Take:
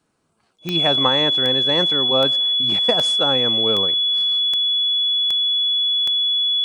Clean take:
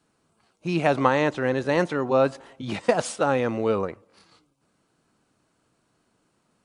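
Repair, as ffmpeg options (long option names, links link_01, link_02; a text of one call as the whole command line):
ffmpeg -i in.wav -af "adeclick=threshold=4,bandreject=frequency=3400:width=30,asetnsamples=nb_out_samples=441:pad=0,asendcmd='4.06 volume volume -8dB',volume=0dB" out.wav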